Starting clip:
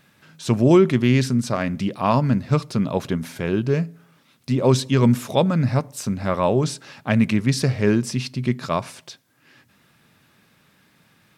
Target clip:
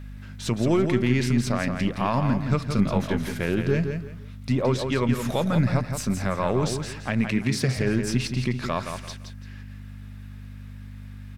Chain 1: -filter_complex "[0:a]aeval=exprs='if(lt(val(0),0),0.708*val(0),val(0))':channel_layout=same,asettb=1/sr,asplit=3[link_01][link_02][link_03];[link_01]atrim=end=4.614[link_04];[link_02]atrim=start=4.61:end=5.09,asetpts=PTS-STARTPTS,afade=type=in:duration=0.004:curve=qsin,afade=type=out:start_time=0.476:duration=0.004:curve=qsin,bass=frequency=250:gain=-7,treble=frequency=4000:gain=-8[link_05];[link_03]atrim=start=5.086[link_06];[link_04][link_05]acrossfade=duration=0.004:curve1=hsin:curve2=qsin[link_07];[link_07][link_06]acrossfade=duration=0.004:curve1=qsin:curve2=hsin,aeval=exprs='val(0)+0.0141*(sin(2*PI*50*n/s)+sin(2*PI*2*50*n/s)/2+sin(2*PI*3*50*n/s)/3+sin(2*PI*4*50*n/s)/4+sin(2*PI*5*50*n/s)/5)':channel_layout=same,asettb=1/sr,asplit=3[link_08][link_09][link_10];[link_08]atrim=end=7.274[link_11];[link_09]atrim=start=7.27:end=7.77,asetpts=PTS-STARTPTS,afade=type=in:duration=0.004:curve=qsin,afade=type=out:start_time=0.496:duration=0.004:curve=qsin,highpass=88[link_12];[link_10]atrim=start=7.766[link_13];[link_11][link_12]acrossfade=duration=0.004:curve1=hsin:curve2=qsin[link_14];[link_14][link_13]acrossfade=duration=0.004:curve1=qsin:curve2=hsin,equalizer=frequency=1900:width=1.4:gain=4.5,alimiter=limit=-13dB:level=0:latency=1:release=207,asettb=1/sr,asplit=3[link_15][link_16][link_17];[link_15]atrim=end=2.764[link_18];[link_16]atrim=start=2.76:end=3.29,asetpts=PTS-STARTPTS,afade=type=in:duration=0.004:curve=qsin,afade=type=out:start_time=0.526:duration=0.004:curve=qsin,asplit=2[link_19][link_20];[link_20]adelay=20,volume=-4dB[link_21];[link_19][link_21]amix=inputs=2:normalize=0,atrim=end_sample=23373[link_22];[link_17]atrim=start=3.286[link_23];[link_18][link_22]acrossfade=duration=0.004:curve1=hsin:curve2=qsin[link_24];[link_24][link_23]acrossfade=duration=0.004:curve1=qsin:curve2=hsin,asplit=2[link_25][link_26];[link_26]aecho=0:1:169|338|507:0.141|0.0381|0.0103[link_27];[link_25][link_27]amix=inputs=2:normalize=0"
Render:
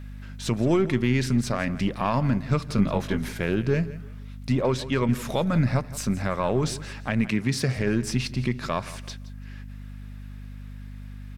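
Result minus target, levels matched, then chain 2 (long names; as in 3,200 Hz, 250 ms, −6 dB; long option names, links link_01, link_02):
echo-to-direct −10 dB
-filter_complex "[0:a]aeval=exprs='if(lt(val(0),0),0.708*val(0),val(0))':channel_layout=same,asettb=1/sr,asplit=3[link_01][link_02][link_03];[link_01]atrim=end=4.614[link_04];[link_02]atrim=start=4.61:end=5.09,asetpts=PTS-STARTPTS,afade=type=in:duration=0.004:curve=qsin,afade=type=out:start_time=0.476:duration=0.004:curve=qsin,bass=frequency=250:gain=-7,treble=frequency=4000:gain=-8[link_05];[link_03]atrim=start=5.086[link_06];[link_04][link_05]acrossfade=duration=0.004:curve1=hsin:curve2=qsin[link_07];[link_07][link_06]acrossfade=duration=0.004:curve1=qsin:curve2=hsin,aeval=exprs='val(0)+0.0141*(sin(2*PI*50*n/s)+sin(2*PI*2*50*n/s)/2+sin(2*PI*3*50*n/s)/3+sin(2*PI*4*50*n/s)/4+sin(2*PI*5*50*n/s)/5)':channel_layout=same,asettb=1/sr,asplit=3[link_08][link_09][link_10];[link_08]atrim=end=7.274[link_11];[link_09]atrim=start=7.27:end=7.77,asetpts=PTS-STARTPTS,afade=type=in:duration=0.004:curve=qsin,afade=type=out:start_time=0.496:duration=0.004:curve=qsin,highpass=88[link_12];[link_10]atrim=start=7.766[link_13];[link_11][link_12]acrossfade=duration=0.004:curve1=hsin:curve2=qsin[link_14];[link_14][link_13]acrossfade=duration=0.004:curve1=qsin:curve2=hsin,equalizer=frequency=1900:width=1.4:gain=4.5,alimiter=limit=-13dB:level=0:latency=1:release=207,asettb=1/sr,asplit=3[link_15][link_16][link_17];[link_15]atrim=end=2.764[link_18];[link_16]atrim=start=2.76:end=3.29,asetpts=PTS-STARTPTS,afade=type=in:duration=0.004:curve=qsin,afade=type=out:start_time=0.526:duration=0.004:curve=qsin,asplit=2[link_19][link_20];[link_20]adelay=20,volume=-4dB[link_21];[link_19][link_21]amix=inputs=2:normalize=0,atrim=end_sample=23373[link_22];[link_17]atrim=start=3.286[link_23];[link_18][link_22]acrossfade=duration=0.004:curve1=hsin:curve2=qsin[link_24];[link_24][link_23]acrossfade=duration=0.004:curve1=qsin:curve2=hsin,asplit=2[link_25][link_26];[link_26]aecho=0:1:169|338|507:0.447|0.121|0.0326[link_27];[link_25][link_27]amix=inputs=2:normalize=0"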